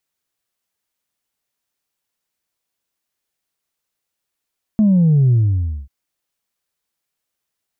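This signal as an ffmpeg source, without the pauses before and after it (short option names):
-f lavfi -i "aevalsrc='0.316*clip((1.09-t)/0.56,0,1)*tanh(1.06*sin(2*PI*220*1.09/log(65/220)*(exp(log(65/220)*t/1.09)-1)))/tanh(1.06)':d=1.09:s=44100"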